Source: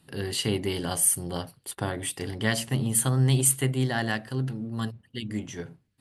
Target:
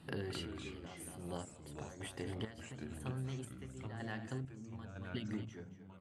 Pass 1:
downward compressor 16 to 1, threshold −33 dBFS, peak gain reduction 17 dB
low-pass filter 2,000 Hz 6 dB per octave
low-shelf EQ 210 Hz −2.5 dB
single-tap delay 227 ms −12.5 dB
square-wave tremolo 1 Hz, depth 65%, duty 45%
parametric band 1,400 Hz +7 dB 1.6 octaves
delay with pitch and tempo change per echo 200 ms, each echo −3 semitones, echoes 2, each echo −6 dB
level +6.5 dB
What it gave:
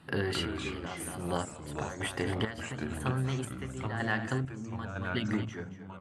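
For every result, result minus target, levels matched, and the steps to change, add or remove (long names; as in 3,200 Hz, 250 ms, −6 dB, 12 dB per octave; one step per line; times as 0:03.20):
downward compressor: peak gain reduction −9.5 dB; 1,000 Hz band +3.0 dB
change: downward compressor 16 to 1, threshold −43 dBFS, peak gain reduction 26.5 dB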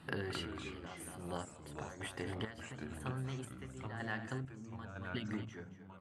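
1,000 Hz band +3.5 dB
remove: parametric band 1,400 Hz +7 dB 1.6 octaves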